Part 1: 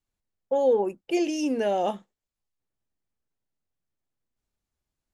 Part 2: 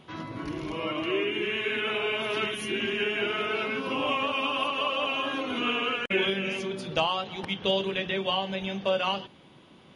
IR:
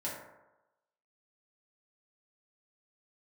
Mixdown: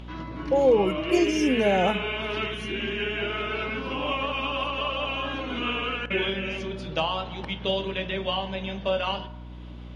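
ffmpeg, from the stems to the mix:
-filter_complex "[0:a]equalizer=frequency=180:width=4.8:gain=13,volume=2dB[link_01];[1:a]lowpass=5700,acompressor=mode=upward:threshold=-43dB:ratio=2.5,volume=-2dB,asplit=2[link_02][link_03];[link_03]volume=-11dB[link_04];[2:a]atrim=start_sample=2205[link_05];[link_04][link_05]afir=irnorm=-1:irlink=0[link_06];[link_01][link_02][link_06]amix=inputs=3:normalize=0,aeval=exprs='val(0)+0.0112*(sin(2*PI*60*n/s)+sin(2*PI*2*60*n/s)/2+sin(2*PI*3*60*n/s)/3+sin(2*PI*4*60*n/s)/4+sin(2*PI*5*60*n/s)/5)':channel_layout=same"

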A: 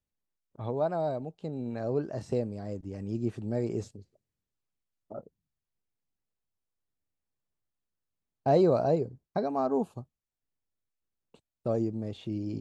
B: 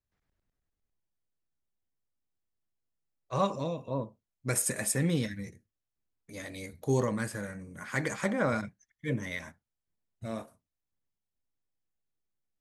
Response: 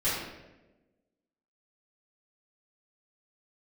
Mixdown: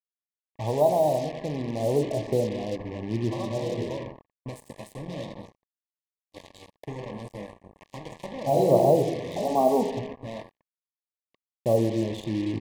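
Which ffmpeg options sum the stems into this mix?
-filter_complex "[0:a]lowpass=6300,volume=2dB,asplit=2[link_01][link_02];[link_02]volume=-15dB[link_03];[1:a]acompressor=threshold=-33dB:ratio=16,volume=-3dB,asplit=3[link_04][link_05][link_06];[link_05]volume=-13dB[link_07];[link_06]apad=whole_len=555875[link_08];[link_01][link_08]sidechaincompress=threshold=-50dB:ratio=8:attack=6.2:release=116[link_09];[2:a]atrim=start_sample=2205[link_10];[link_03][link_07]amix=inputs=2:normalize=0[link_11];[link_11][link_10]afir=irnorm=-1:irlink=0[link_12];[link_09][link_04][link_12]amix=inputs=3:normalize=0,firequalizer=gain_entry='entry(200,0);entry(510,3);entry(850,6);entry(1700,-17);entry(3400,4);entry(5200,-10);entry(8100,-12)':delay=0.05:min_phase=1,acrusher=bits=5:mix=0:aa=0.5,asuperstop=centerf=1400:order=12:qfactor=2.6"

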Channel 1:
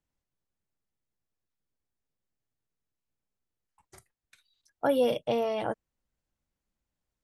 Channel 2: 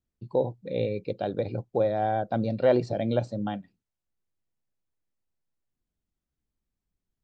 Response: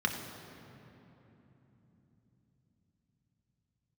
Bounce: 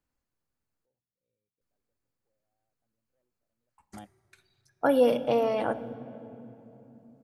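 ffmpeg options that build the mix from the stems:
-filter_complex "[0:a]volume=1.5dB,asplit=3[link_01][link_02][link_03];[link_01]atrim=end=0.86,asetpts=PTS-STARTPTS,afade=type=out:start_time=0.856:duration=0.004:curve=hsin[link_04];[link_02]atrim=start=0.86:end=1.61,asetpts=PTS-STARTPTS,volume=0[link_05];[link_03]atrim=start=1.61,asetpts=PTS-STARTPTS,afade=type=in:duration=0.004:curve=hsin[link_06];[link_04][link_05][link_06]concat=n=3:v=0:a=1,asplit=3[link_07][link_08][link_09];[link_08]volume=-15dB[link_10];[1:a]asoftclip=type=tanh:threshold=-14dB,acompressor=mode=upward:threshold=-37dB:ratio=2.5,adelay=500,volume=-13.5dB[link_11];[link_09]apad=whole_len=341308[link_12];[link_11][link_12]sidechaingate=range=-46dB:threshold=-56dB:ratio=16:detection=peak[link_13];[2:a]atrim=start_sample=2205[link_14];[link_10][link_14]afir=irnorm=-1:irlink=0[link_15];[link_07][link_13][link_15]amix=inputs=3:normalize=0"

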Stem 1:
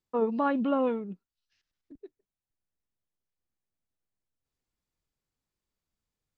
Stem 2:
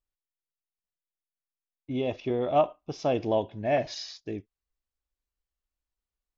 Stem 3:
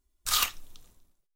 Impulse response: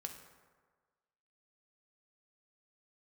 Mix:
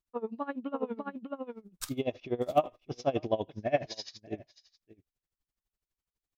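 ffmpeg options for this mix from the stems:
-filter_complex "[0:a]volume=-4.5dB,asplit=2[link_01][link_02];[link_02]volume=-4dB[link_03];[1:a]bandreject=frequency=890:width=12,volume=1dB,asplit=3[link_04][link_05][link_06];[link_05]volume=-19dB[link_07];[2:a]adelay=1550,volume=-4dB,asplit=2[link_08][link_09];[link_09]volume=-23.5dB[link_10];[link_06]apad=whole_len=128200[link_11];[link_08][link_11]sidechaincompress=threshold=-58dB:ratio=10:attack=16:release=390[link_12];[link_03][link_07][link_10]amix=inputs=3:normalize=0,aecho=0:1:601:1[link_13];[link_01][link_04][link_12][link_13]amix=inputs=4:normalize=0,aeval=exprs='val(0)*pow(10,-21*(0.5-0.5*cos(2*PI*12*n/s))/20)':channel_layout=same"

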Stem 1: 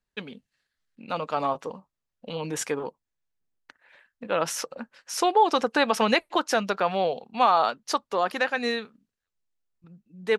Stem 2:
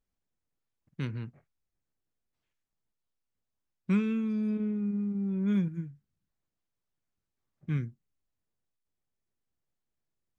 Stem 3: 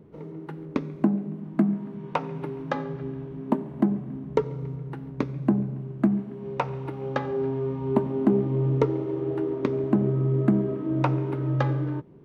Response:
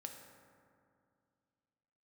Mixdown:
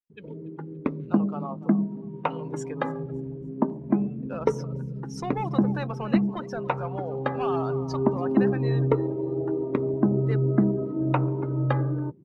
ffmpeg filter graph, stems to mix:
-filter_complex "[0:a]volume=17.5dB,asoftclip=hard,volume=-17.5dB,adynamicequalizer=threshold=0.0126:dfrequency=2000:dqfactor=0.7:tfrequency=2000:tqfactor=0.7:attack=5:release=100:ratio=0.375:range=3:mode=cutabove:tftype=highshelf,volume=-9.5dB,asplit=2[link_01][link_02];[link_02]volume=-13.5dB[link_03];[1:a]volume=-12dB[link_04];[2:a]adelay=100,volume=0dB[link_05];[link_03]aecho=0:1:286|572|858|1144|1430|1716:1|0.44|0.194|0.0852|0.0375|0.0165[link_06];[link_01][link_04][link_05][link_06]amix=inputs=4:normalize=0,afftdn=noise_reduction=17:noise_floor=-41"

